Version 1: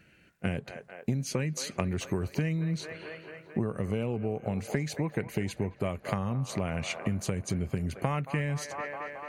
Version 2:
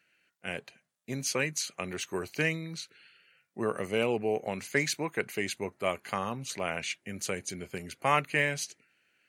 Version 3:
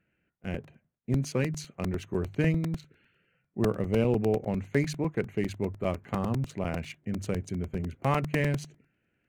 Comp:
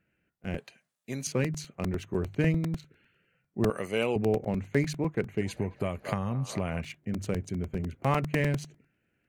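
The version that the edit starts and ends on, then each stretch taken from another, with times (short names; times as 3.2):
3
0.58–1.27 from 2
3.7–4.16 from 2
5.41–6.81 from 1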